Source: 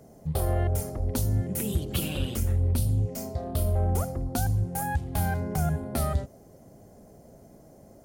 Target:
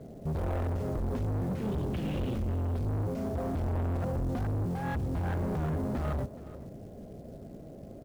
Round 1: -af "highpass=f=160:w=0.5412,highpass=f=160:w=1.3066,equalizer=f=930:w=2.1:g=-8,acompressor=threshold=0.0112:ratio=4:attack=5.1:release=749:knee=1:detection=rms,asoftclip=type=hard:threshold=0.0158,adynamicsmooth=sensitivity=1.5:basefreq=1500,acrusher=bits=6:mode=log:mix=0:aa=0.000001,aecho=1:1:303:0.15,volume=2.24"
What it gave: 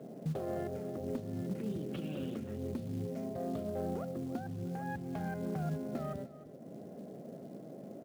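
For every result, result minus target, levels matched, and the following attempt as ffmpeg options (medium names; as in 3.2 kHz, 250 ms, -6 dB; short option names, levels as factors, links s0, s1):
compression: peak gain reduction +13.5 dB; echo 118 ms early; 125 Hz band -3.0 dB
-af "highpass=f=160:w=0.5412,highpass=f=160:w=1.3066,equalizer=f=930:w=2.1:g=-8,asoftclip=type=hard:threshold=0.0158,adynamicsmooth=sensitivity=1.5:basefreq=1500,acrusher=bits=6:mode=log:mix=0:aa=0.000001,aecho=1:1:303:0.15,volume=2.24"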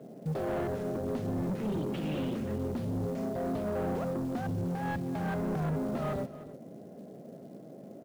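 echo 118 ms early; 125 Hz band -4.0 dB
-af "highpass=f=160:w=0.5412,highpass=f=160:w=1.3066,equalizer=f=930:w=2.1:g=-8,asoftclip=type=hard:threshold=0.0158,adynamicsmooth=sensitivity=1.5:basefreq=1500,acrusher=bits=6:mode=log:mix=0:aa=0.000001,aecho=1:1:421:0.15,volume=2.24"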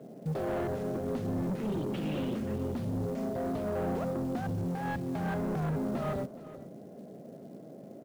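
125 Hz band -4.0 dB
-af "equalizer=f=930:w=2.1:g=-8,asoftclip=type=hard:threshold=0.0158,adynamicsmooth=sensitivity=1.5:basefreq=1500,acrusher=bits=6:mode=log:mix=0:aa=0.000001,aecho=1:1:421:0.15,volume=2.24"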